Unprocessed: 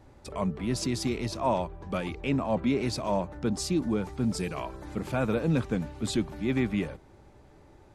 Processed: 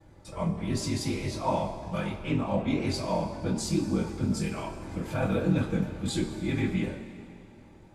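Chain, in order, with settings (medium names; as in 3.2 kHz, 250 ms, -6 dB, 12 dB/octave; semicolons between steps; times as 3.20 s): ring modulator 21 Hz; two-slope reverb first 0.22 s, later 2.5 s, from -19 dB, DRR -9.5 dB; trim -7.5 dB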